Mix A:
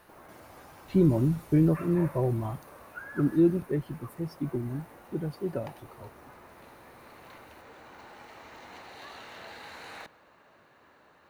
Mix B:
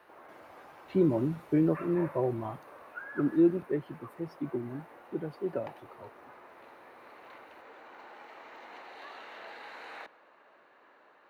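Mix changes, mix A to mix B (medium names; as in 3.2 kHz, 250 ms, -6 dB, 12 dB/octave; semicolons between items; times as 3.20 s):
speech: add peaking EQ 98 Hz +10.5 dB 1.8 oct; master: add three-band isolator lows -22 dB, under 270 Hz, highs -13 dB, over 3.5 kHz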